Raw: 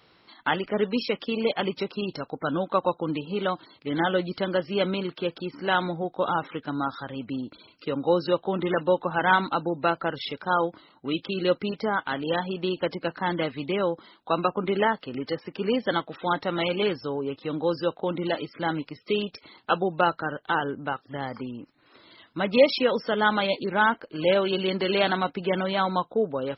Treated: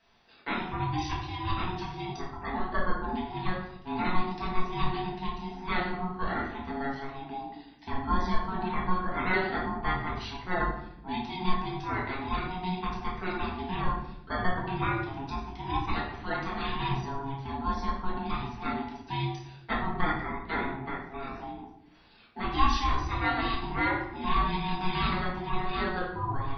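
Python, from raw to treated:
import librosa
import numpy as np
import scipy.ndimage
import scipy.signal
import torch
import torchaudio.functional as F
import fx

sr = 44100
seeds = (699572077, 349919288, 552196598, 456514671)

y = fx.peak_eq(x, sr, hz=1400.0, db=12.0, octaves=0.27, at=(7.41, 8.3))
y = y * np.sin(2.0 * np.pi * 550.0 * np.arange(len(y)) / sr)
y = fx.room_shoebox(y, sr, seeds[0], volume_m3=200.0, walls='mixed', distance_m=1.6)
y = F.gain(torch.from_numpy(y), -8.5).numpy()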